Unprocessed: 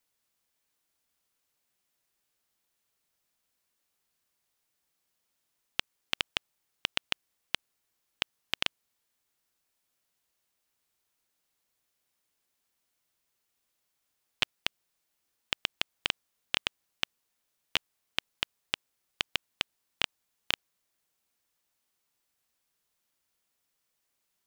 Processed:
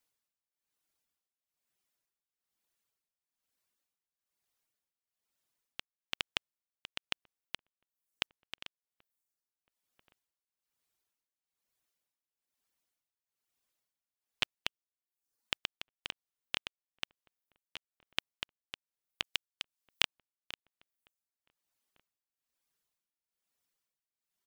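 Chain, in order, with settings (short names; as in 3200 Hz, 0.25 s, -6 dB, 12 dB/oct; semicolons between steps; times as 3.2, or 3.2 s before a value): reverb removal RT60 0.81 s; 19.24–20.02 high shelf 2200 Hz +10 dB; outdoor echo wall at 250 m, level -28 dB; tremolo 1.1 Hz, depth 83%; gain -2.5 dB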